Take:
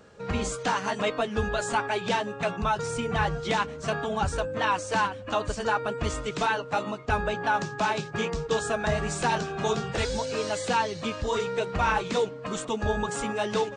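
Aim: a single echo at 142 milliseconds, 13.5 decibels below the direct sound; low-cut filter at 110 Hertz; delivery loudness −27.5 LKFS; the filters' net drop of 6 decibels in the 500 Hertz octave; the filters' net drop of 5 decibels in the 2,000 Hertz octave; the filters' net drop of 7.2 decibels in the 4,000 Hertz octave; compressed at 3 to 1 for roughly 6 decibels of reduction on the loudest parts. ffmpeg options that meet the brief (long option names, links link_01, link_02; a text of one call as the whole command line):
ffmpeg -i in.wav -af "highpass=110,equalizer=frequency=500:width_type=o:gain=-7,equalizer=frequency=2000:width_type=o:gain=-5,equalizer=frequency=4000:width_type=o:gain=-7.5,acompressor=threshold=-32dB:ratio=3,aecho=1:1:142:0.211,volume=8dB" out.wav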